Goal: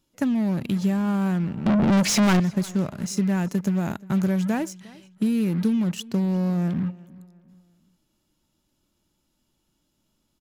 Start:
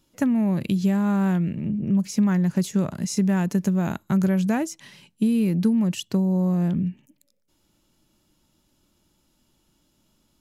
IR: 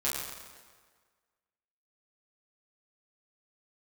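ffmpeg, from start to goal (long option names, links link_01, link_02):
-filter_complex "[0:a]asplit=2[link_01][link_02];[link_02]acrusher=bits=4:mix=0:aa=0.5,volume=-4dB[link_03];[link_01][link_03]amix=inputs=2:normalize=0,asettb=1/sr,asplit=3[link_04][link_05][link_06];[link_04]atrim=end=1.664[link_07];[link_05]atrim=start=1.66:end=2.4,asetpts=PTS-STARTPTS,afade=type=in:duration=0.004:curve=qsin,afade=type=out:start_time=0.736:duration=0.004:curve=qsin,asplit=2[link_08][link_09];[link_09]highpass=frequency=720:poles=1,volume=38dB,asoftclip=type=tanh:threshold=-6dB[link_10];[link_08][link_10]amix=inputs=2:normalize=0,lowpass=frequency=5100:poles=1,volume=-6dB[link_11];[link_06]atrim=start=2.396[link_12];[link_07][link_11]acrossfade=duration=0.004:curve1=hsin:curve2=qsin[link_13];[link_13][link_12]acrossfade=duration=0.004:curve1=qsin:curve2=hsin,asplit=2[link_14][link_15];[link_15]adelay=354,lowpass=frequency=4600:poles=1,volume=-22dB,asplit=2[link_16][link_17];[link_17]adelay=354,lowpass=frequency=4600:poles=1,volume=0.4,asplit=2[link_18][link_19];[link_19]adelay=354,lowpass=frequency=4600:poles=1,volume=0.4[link_20];[link_14][link_16][link_18][link_20]amix=inputs=4:normalize=0,volume=-6dB"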